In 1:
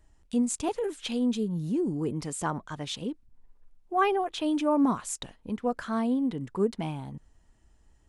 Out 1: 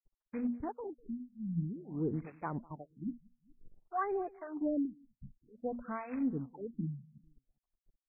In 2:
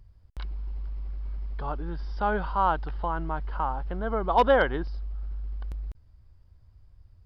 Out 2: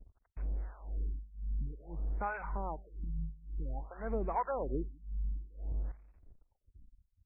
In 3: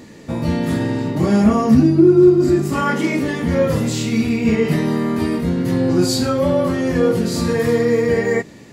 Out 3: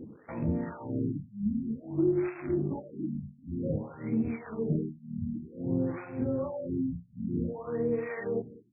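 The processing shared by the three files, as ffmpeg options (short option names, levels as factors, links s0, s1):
-filter_complex "[0:a]bandreject=f=60:t=h:w=6,bandreject=f=120:t=h:w=6,bandreject=f=180:t=h:w=6,bandreject=f=240:t=h:w=6,afftfilt=real='re*gte(hypot(re,im),0.0224)':imag='im*gte(hypot(re,im),0.0224)':win_size=1024:overlap=0.75,highshelf=f=2600:g=-4.5,bandreject=f=1700:w=18,acompressor=threshold=0.0355:ratio=2.5,acrusher=bits=3:mode=log:mix=0:aa=0.000001,acrossover=split=660[s0][s1];[s0]aeval=exprs='val(0)*(1-1/2+1/2*cos(2*PI*1.9*n/s))':c=same[s2];[s1]aeval=exprs='val(0)*(1-1/2-1/2*cos(2*PI*1.9*n/s))':c=same[s3];[s2][s3]amix=inputs=2:normalize=0,aecho=1:1:200|400:0.0708|0.0262,afftfilt=real='re*lt(b*sr/1024,240*pow(2700/240,0.5+0.5*sin(2*PI*0.53*pts/sr)))':imag='im*lt(b*sr/1024,240*pow(2700/240,0.5+0.5*sin(2*PI*0.53*pts/sr)))':win_size=1024:overlap=0.75"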